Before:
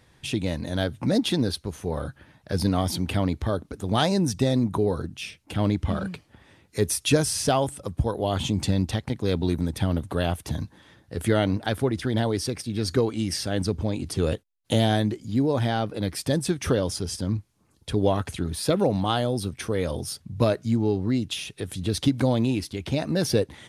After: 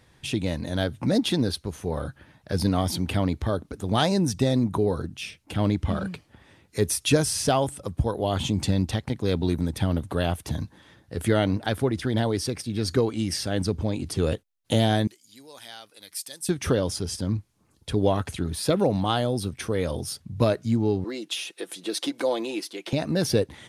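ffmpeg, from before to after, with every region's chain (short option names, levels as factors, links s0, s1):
-filter_complex "[0:a]asettb=1/sr,asplit=3[s0][s1][s2];[s0]atrim=end=15.074[s3];[s1]atrim=start=15.07:end=16.49,asetpts=PTS-STARTPTS,afade=t=in:d=0.004:c=qsin,afade=t=out:st=1.416:d=0.004:c=qsin,aderivative,bandreject=f=60:t=h:w=6,bandreject=f=120:t=h:w=6,bandreject=f=180:t=h:w=6[s4];[s2]atrim=start=16.486[s5];[s3][s4]acrossfade=d=0.004:c1=hsin:c2=qsin[s6];[s6][s5]acrossfade=d=0.004:c1=qsin:c2=hsin,asettb=1/sr,asplit=3[s7][s8][s9];[s7]atrim=end=21.044[s10];[s8]atrim=start=21.04:end=22.93,asetpts=PTS-STARTPTS,afade=t=in:d=0.004:c=qsin,afade=t=out:st=1.886:d=0.004:c=qsin,highpass=f=320:w=0.5412,highpass=f=320:w=1.3066,aecho=1:1:5.9:0.45,atrim=end_sample=83349[s11];[s9]atrim=start=22.926[s12];[s10][s11]acrossfade=d=0.004:c1=hsin:c2=qsin[s13];[s13][s12]acrossfade=d=0.004:c1=qsin:c2=hsin"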